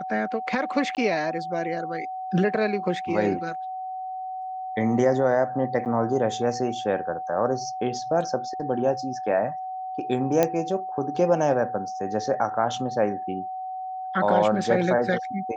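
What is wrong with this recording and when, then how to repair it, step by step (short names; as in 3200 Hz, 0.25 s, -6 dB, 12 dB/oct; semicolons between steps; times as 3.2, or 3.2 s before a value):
tone 750 Hz -30 dBFS
0.95–0.97 gap 18 ms
5.85–5.86 gap 8.9 ms
10.43 pop -7 dBFS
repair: de-click; notch 750 Hz, Q 30; interpolate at 0.95, 18 ms; interpolate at 5.85, 8.9 ms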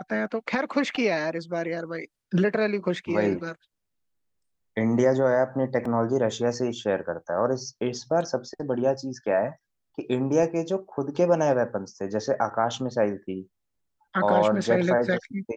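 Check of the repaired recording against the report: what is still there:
none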